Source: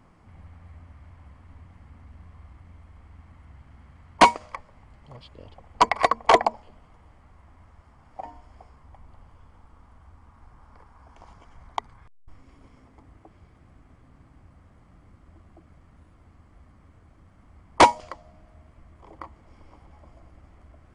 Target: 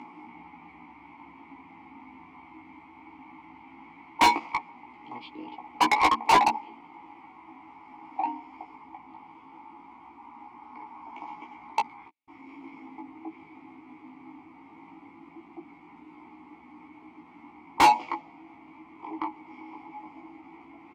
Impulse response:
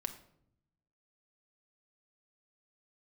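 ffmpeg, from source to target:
-filter_complex "[0:a]acompressor=mode=upward:threshold=-47dB:ratio=2.5,asplit=3[link_01][link_02][link_03];[link_01]bandpass=frequency=300:width_type=q:width=8,volume=0dB[link_04];[link_02]bandpass=frequency=870:width_type=q:width=8,volume=-6dB[link_05];[link_03]bandpass=frequency=2240:width_type=q:width=8,volume=-9dB[link_06];[link_04][link_05][link_06]amix=inputs=3:normalize=0,asplit=2[link_07][link_08];[link_08]adelay=12,volume=-9dB[link_09];[link_07][link_09]amix=inputs=2:normalize=0,asplit=2[link_10][link_11];[link_11]highpass=frequency=720:poles=1,volume=30dB,asoftclip=type=tanh:threshold=-11.5dB[link_12];[link_10][link_12]amix=inputs=2:normalize=0,lowpass=frequency=6100:poles=1,volume=-6dB,flanger=delay=16.5:depth=2.6:speed=0.18,volume=4dB"

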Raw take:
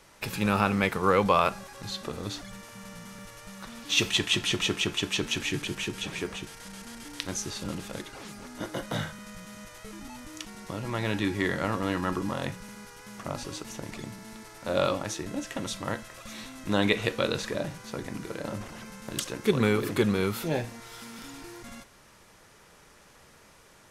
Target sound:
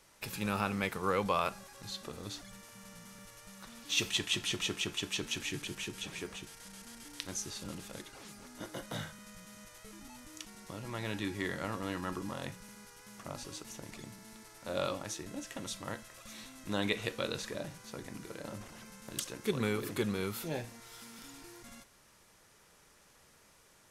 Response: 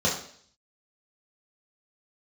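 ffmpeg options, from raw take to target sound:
-af "highshelf=frequency=4600:gain=6.5,volume=-9dB"

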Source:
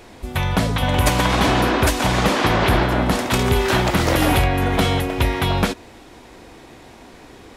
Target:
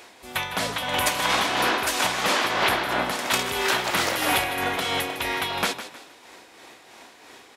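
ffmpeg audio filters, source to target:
ffmpeg -i in.wav -filter_complex "[0:a]highpass=frequency=1100:poles=1,asplit=2[link_01][link_02];[link_02]alimiter=limit=-14.5dB:level=0:latency=1,volume=-2dB[link_03];[link_01][link_03]amix=inputs=2:normalize=0,tremolo=f=3:d=0.5,asplit=4[link_04][link_05][link_06][link_07];[link_05]adelay=156,afreqshift=34,volume=-12dB[link_08];[link_06]adelay=312,afreqshift=68,volume=-21.9dB[link_09];[link_07]adelay=468,afreqshift=102,volume=-31.8dB[link_10];[link_04][link_08][link_09][link_10]amix=inputs=4:normalize=0,volume=-2.5dB" out.wav

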